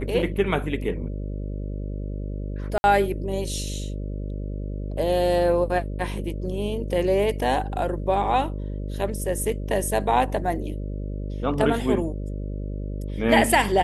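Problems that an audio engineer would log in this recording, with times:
mains buzz 50 Hz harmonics 12 −30 dBFS
0:02.78–0:02.84: drop-out 60 ms

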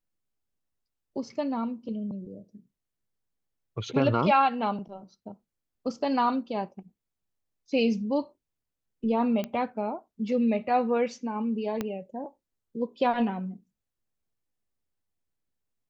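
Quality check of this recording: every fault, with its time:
0:09.44: click −19 dBFS
0:11.81: click −16 dBFS

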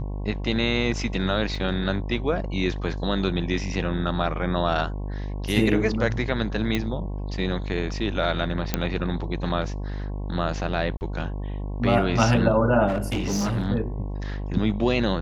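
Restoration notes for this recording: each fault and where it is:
mains buzz 50 Hz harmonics 22 −30 dBFS
0:01.55: drop-out 4.1 ms
0:06.75: click −11 dBFS
0:08.74: click −6 dBFS
0:10.97–0:11.01: drop-out 39 ms
0:12.87–0:13.68: clipping −21 dBFS

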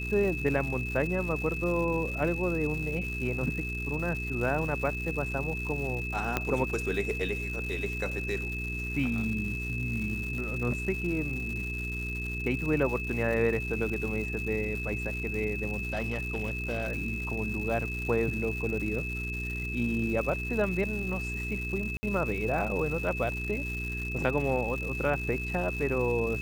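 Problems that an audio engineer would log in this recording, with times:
surface crackle 300 per second −36 dBFS
mains hum 60 Hz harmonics 7 −36 dBFS
whistle 2,600 Hz −35 dBFS
0:06.37: click −12 dBFS
0:15.76–0:16.88: clipping −26 dBFS
0:21.97–0:22.03: drop-out 60 ms

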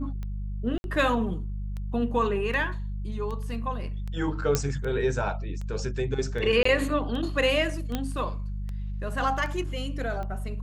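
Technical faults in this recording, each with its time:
mains hum 50 Hz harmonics 4 −32 dBFS
scratch tick 78 rpm −25 dBFS
0:00.78–0:00.84: drop-out 61 ms
0:04.55: click −8 dBFS
0:06.63–0:06.65: drop-out 24 ms
0:07.95: click −14 dBFS

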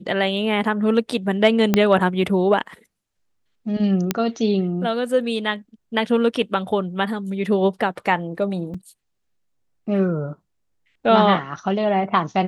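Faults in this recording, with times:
0:01.74: click −3 dBFS
0:04.11: click −4 dBFS
0:08.74: drop-out 4.6 ms

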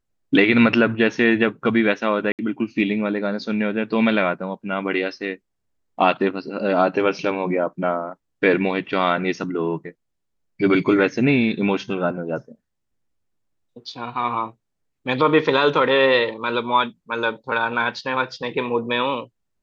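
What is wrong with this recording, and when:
0:02.32–0:02.39: drop-out 68 ms

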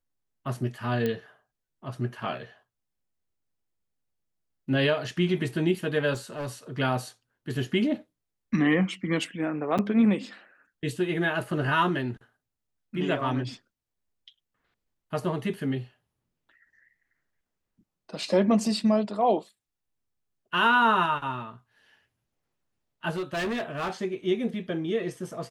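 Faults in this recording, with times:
0:01.06: click −16 dBFS
0:06.13–0:06.49: clipping −29 dBFS
0:09.78–0:09.79: drop-out 6.9 ms
0:23.10–0:23.91: clipping −26.5 dBFS

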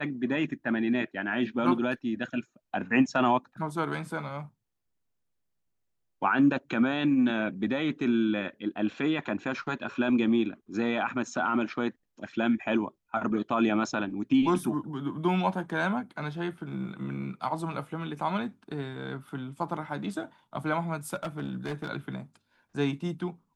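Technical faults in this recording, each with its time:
0:21.14–0:21.90: clipping −28.5 dBFS

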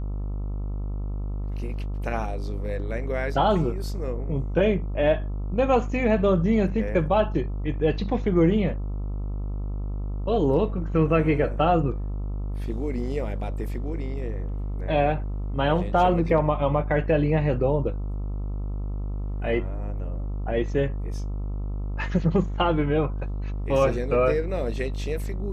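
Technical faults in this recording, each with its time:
mains buzz 50 Hz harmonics 27 −29 dBFS

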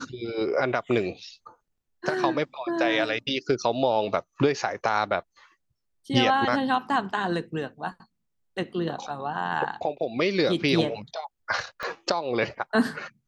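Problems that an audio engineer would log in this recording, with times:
0:11.83: click −19 dBFS

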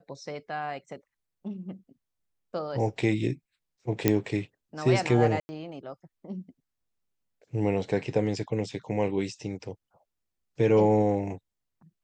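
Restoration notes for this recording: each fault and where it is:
0:04.08: click −7 dBFS
0:05.40–0:05.49: drop-out 90 ms

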